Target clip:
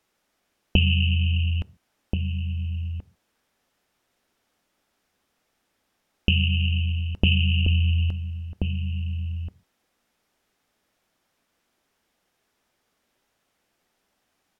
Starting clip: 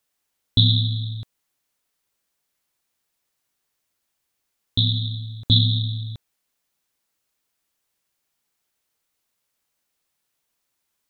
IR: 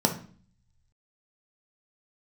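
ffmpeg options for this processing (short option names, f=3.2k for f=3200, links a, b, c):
-filter_complex "[0:a]lowpass=f=3k:p=1,acompressor=threshold=-27dB:ratio=4,asplit=2[a][b];[b]adelay=1050,volume=-6dB,highshelf=f=4k:g=-23.6[c];[a][c]amix=inputs=2:normalize=0,asplit=2[d][e];[1:a]atrim=start_sample=2205,atrim=end_sample=6615,asetrate=57330,aresample=44100[f];[e][f]afir=irnorm=-1:irlink=0,volume=-24.5dB[g];[d][g]amix=inputs=2:normalize=0,asetrate=33516,aresample=44100,volume=8.5dB"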